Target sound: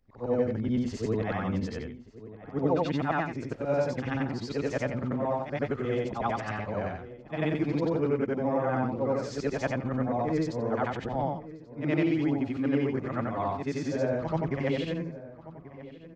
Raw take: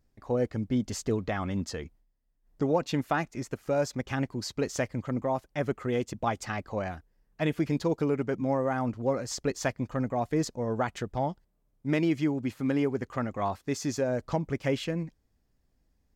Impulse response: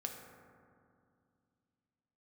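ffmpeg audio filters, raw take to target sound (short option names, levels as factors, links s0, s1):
-filter_complex "[0:a]afftfilt=real='re':imag='-im':win_size=8192:overlap=0.75,lowpass=3600,asplit=2[s0][s1];[s1]adelay=1135,lowpass=f=2000:p=1,volume=0.158,asplit=2[s2][s3];[s3]adelay=1135,lowpass=f=2000:p=1,volume=0.35,asplit=2[s4][s5];[s5]adelay=1135,lowpass=f=2000:p=1,volume=0.35[s6];[s0][s2][s4][s6]amix=inputs=4:normalize=0,volume=1.78"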